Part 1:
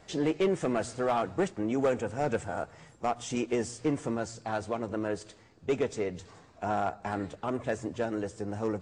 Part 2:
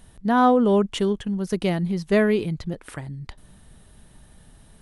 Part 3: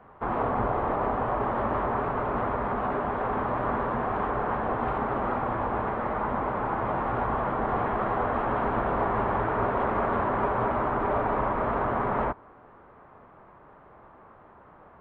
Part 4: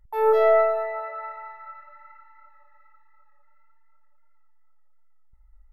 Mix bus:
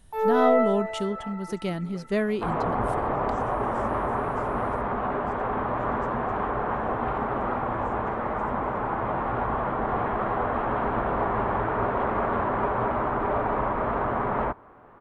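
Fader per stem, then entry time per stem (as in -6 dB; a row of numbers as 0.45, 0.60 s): -19.5, -6.5, +0.5, -3.5 dB; 0.10, 0.00, 2.20, 0.00 s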